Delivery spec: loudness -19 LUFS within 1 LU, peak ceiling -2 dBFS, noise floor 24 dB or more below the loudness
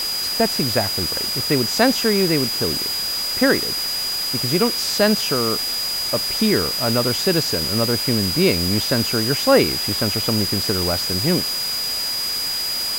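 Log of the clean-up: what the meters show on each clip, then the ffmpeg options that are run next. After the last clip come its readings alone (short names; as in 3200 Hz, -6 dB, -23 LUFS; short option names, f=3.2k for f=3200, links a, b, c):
steady tone 4900 Hz; tone level -22 dBFS; noise floor -24 dBFS; noise floor target -43 dBFS; loudness -18.5 LUFS; peak -1.5 dBFS; loudness target -19.0 LUFS
-> -af "bandreject=f=4.9k:w=30"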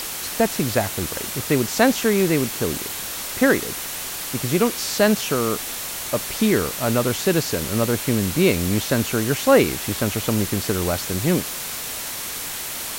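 steady tone none; noise floor -30 dBFS; noise floor target -46 dBFS
-> -af "afftdn=nr=16:nf=-30"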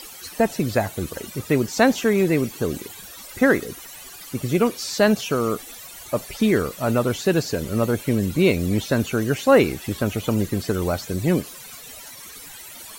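noise floor -40 dBFS; noise floor target -46 dBFS
-> -af "afftdn=nr=6:nf=-40"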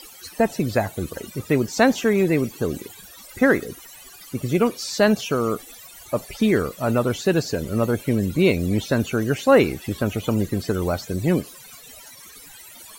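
noise floor -44 dBFS; noise floor target -46 dBFS
-> -af "afftdn=nr=6:nf=-44"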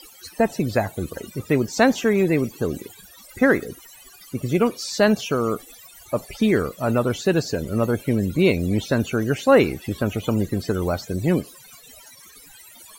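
noise floor -47 dBFS; loudness -22.0 LUFS; peak -2.0 dBFS; loudness target -19.0 LUFS
-> -af "volume=3dB,alimiter=limit=-2dB:level=0:latency=1"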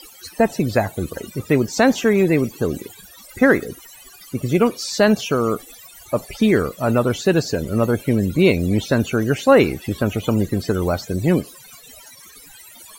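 loudness -19.0 LUFS; peak -2.0 dBFS; noise floor -44 dBFS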